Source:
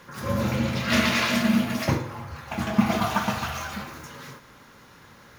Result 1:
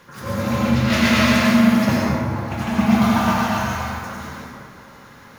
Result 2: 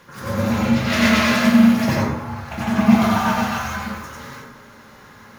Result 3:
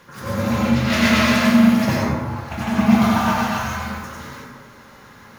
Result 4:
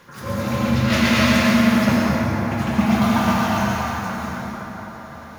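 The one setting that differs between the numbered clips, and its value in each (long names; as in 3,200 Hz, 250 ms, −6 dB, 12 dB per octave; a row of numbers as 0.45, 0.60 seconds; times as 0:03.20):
dense smooth reverb, RT60: 2.3, 0.52, 1.1, 5.1 seconds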